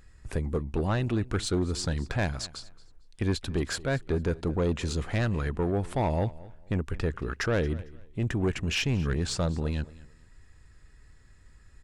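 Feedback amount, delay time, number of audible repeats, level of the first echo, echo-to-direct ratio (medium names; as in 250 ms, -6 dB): 24%, 225 ms, 2, -20.0 dB, -20.0 dB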